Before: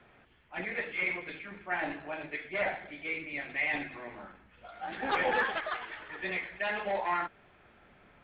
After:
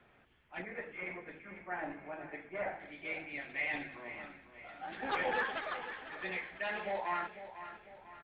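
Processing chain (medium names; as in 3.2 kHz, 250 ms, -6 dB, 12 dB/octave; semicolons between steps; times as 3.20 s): 0.62–2.80 s: low-pass 1.6 kHz 12 dB/octave; feedback delay 499 ms, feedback 46%, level -12 dB; trim -5 dB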